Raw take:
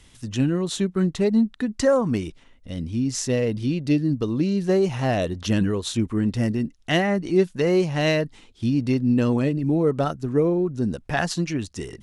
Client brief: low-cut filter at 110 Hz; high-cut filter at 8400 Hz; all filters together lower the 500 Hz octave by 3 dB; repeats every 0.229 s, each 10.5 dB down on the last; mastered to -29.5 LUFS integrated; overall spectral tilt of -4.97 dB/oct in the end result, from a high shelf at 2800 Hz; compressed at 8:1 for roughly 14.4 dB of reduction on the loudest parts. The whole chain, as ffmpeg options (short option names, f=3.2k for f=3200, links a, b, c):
-af "highpass=110,lowpass=8.4k,equalizer=f=500:t=o:g=-4,highshelf=f=2.8k:g=3.5,acompressor=threshold=-32dB:ratio=8,aecho=1:1:229|458|687:0.299|0.0896|0.0269,volume=6dB"